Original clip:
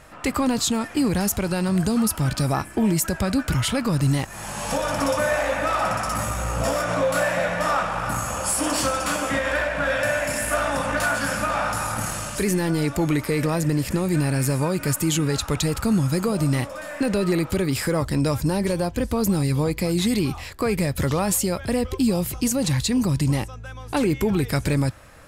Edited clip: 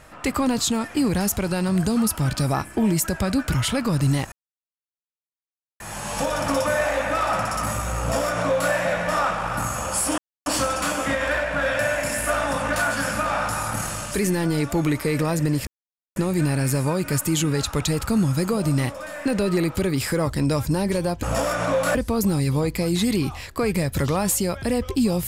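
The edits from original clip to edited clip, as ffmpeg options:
-filter_complex "[0:a]asplit=6[s0][s1][s2][s3][s4][s5];[s0]atrim=end=4.32,asetpts=PTS-STARTPTS,afade=t=out:st=4.316:d=0.004:c=hsin,apad=pad_dur=1.48[s6];[s1]atrim=start=4.32:end=8.7,asetpts=PTS-STARTPTS,afade=t=in:d=0.004:c=hsin,afade=t=out:st=4.376:d=0.004:c=hsin,apad=pad_dur=0.28[s7];[s2]atrim=start=8.7:end=13.91,asetpts=PTS-STARTPTS,afade=t=in:d=0.004:c=hsin,afade=t=out:st=5.206:d=0.004:c=hsin,apad=pad_dur=0.49[s8];[s3]atrim=start=13.91:end=18.982,asetpts=PTS-STARTPTS,afade=t=in:d=0.004:c=hsin[s9];[s4]atrim=start=6.518:end=7.242[s10];[s5]atrim=start=18.978[s11];[s6][s7][s8][s9]concat=n=4:v=0:a=1[s12];[s12][s10]acrossfade=d=0.004:c1=hsin:c2=hsin[s13];[s13][s11]acrossfade=d=0.004:c1=hsin:c2=hsin"

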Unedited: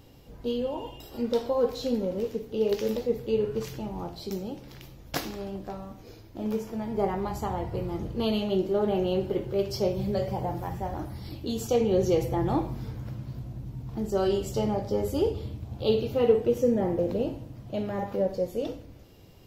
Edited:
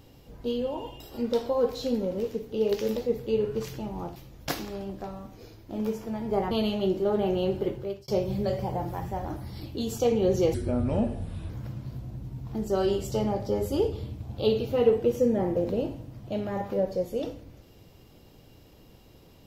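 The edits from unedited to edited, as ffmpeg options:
-filter_complex "[0:a]asplit=6[s0][s1][s2][s3][s4][s5];[s0]atrim=end=4.162[s6];[s1]atrim=start=4.818:end=7.172[s7];[s2]atrim=start=8.198:end=9.77,asetpts=PTS-STARTPTS,afade=t=out:st=1.172:d=0.4[s8];[s3]atrim=start=9.77:end=12.234,asetpts=PTS-STARTPTS,afade=t=in:d=0.004:c=hsin[s9];[s4]atrim=start=12.23:end=12.92,asetpts=PTS-STARTPTS,asetrate=31752,aresample=44100,atrim=end_sample=42262,asetpts=PTS-STARTPTS[s10];[s5]atrim=start=12.916[s11];[s6][s7]acrossfade=d=0.004:c1=hsin:c2=hsin[s12];[s8][s9]concat=n=2:v=0:a=1[s13];[s12][s13]acrossfade=d=0.004:c1=hsin:c2=hsin[s14];[s14][s10]acrossfade=d=0.004:c1=hsin:c2=hsin[s15];[s15][s11]acrossfade=d=0.004:c1=hsin:c2=hsin"

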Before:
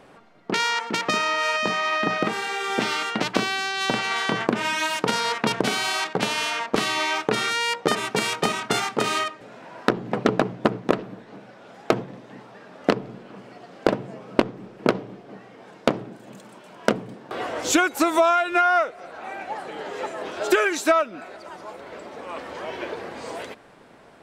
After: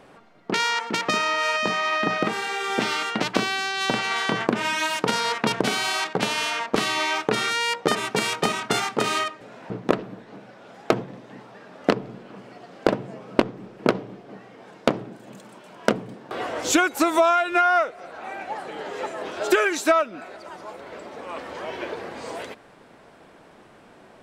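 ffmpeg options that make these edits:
-filter_complex "[0:a]asplit=2[s0][s1];[s0]atrim=end=9.702[s2];[s1]atrim=start=10.698[s3];[s2][s3]acrossfade=d=0.004:c1=hsin:c2=hsin"

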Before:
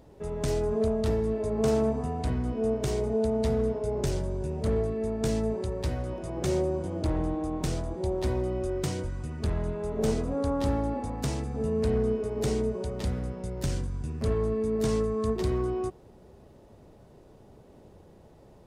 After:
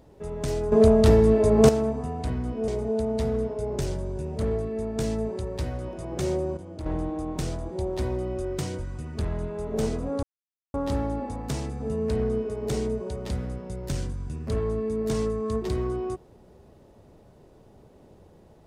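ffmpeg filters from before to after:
-filter_complex "[0:a]asplit=7[s0][s1][s2][s3][s4][s5][s6];[s0]atrim=end=0.722[s7];[s1]atrim=start=0.718:end=1.692,asetpts=PTS-STARTPTS,volume=3.16[s8];[s2]atrim=start=1.688:end=2.682[s9];[s3]atrim=start=2.928:end=6.822[s10];[s4]atrim=start=6.818:end=7.112,asetpts=PTS-STARTPTS,volume=0.398[s11];[s5]atrim=start=7.108:end=10.48,asetpts=PTS-STARTPTS,afade=t=out:st=3.368:d=0.004:c=hsin,apad=pad_dur=0.51[s12];[s6]atrim=start=10.48,asetpts=PTS-STARTPTS,afade=t=in:d=0.004:c=hsin[s13];[s7][s8]acrossfade=d=0.004:c1=hsin:c2=hsin[s14];[s14][s9]acrossfade=d=0.004:c1=hsin:c2=hsin[s15];[s15][s10]acrossfade=d=0.004:c1=hsin:c2=hsin[s16];[s16][s11]acrossfade=d=0.004:c1=hsin:c2=hsin[s17];[s12][s13]concat=n=2:v=0:a=1[s18];[s17][s18]acrossfade=d=0.004:c1=hsin:c2=hsin"

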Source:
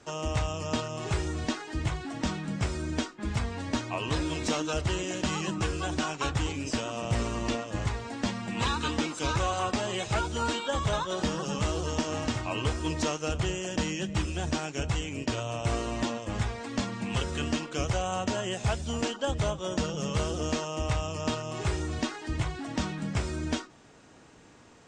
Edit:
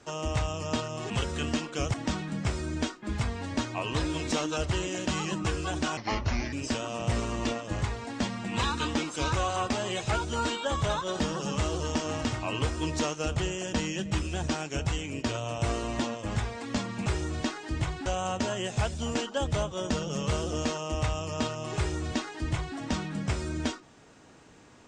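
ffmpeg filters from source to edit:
-filter_complex "[0:a]asplit=7[s0][s1][s2][s3][s4][s5][s6];[s0]atrim=end=1.102[s7];[s1]atrim=start=17.088:end=17.932[s8];[s2]atrim=start=2.098:end=6.134[s9];[s3]atrim=start=6.13:end=6.56,asetpts=PTS-STARTPTS,asetrate=33957,aresample=44100,atrim=end_sample=24627,asetpts=PTS-STARTPTS[s10];[s4]atrim=start=6.556:end=17.092[s11];[s5]atrim=start=1.098:end=2.102[s12];[s6]atrim=start=17.928[s13];[s7][s8]acrossfade=d=0.004:c1=hsin:c2=hsin[s14];[s14][s9]acrossfade=d=0.004:c1=hsin:c2=hsin[s15];[s15][s10]acrossfade=d=0.004:c1=hsin:c2=hsin[s16];[s16][s11]acrossfade=d=0.004:c1=hsin:c2=hsin[s17];[s17][s12]acrossfade=d=0.004:c1=hsin:c2=hsin[s18];[s18][s13]acrossfade=d=0.004:c1=hsin:c2=hsin"

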